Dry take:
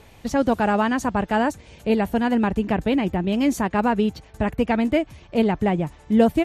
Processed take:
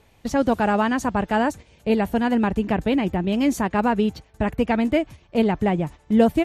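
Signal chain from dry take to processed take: gate -35 dBFS, range -8 dB

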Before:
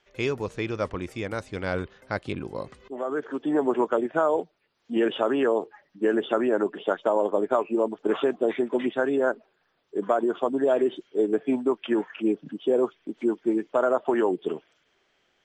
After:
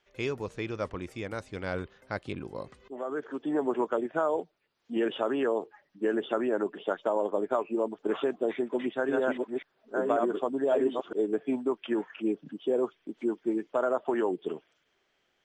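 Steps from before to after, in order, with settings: 8.54–11.13 reverse delay 0.544 s, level -2.5 dB; gain -5 dB

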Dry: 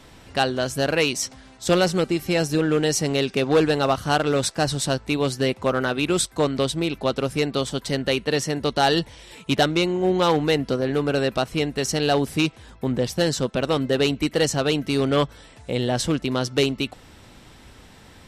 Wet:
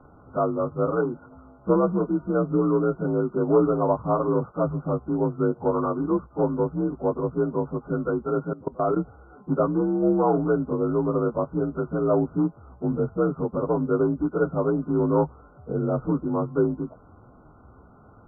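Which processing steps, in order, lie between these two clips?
inharmonic rescaling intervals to 86%; brick-wall FIR low-pass 1500 Hz; 8.53–8.99 level quantiser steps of 22 dB

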